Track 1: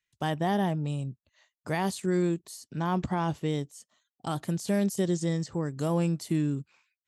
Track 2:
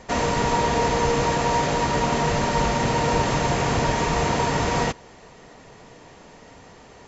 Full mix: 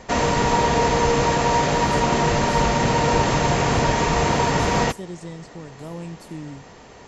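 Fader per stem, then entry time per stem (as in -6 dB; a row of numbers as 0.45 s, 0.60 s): -7.5 dB, +2.5 dB; 0.00 s, 0.00 s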